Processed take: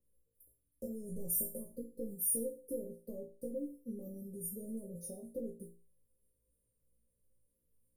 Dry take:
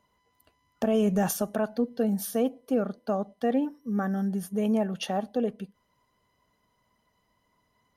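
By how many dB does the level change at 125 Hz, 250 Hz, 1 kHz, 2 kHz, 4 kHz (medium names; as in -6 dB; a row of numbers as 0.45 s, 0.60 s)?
-17.0 dB, -17.0 dB, under -40 dB, under -40 dB, under -30 dB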